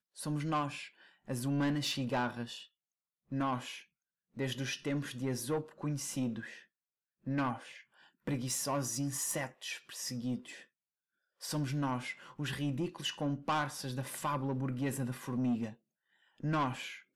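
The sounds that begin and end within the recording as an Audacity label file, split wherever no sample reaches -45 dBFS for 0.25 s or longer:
1.280000	2.630000	sound
3.320000	3.800000	sound
4.370000	6.580000	sound
7.270000	7.800000	sound
8.270000	10.620000	sound
11.420000	15.730000	sound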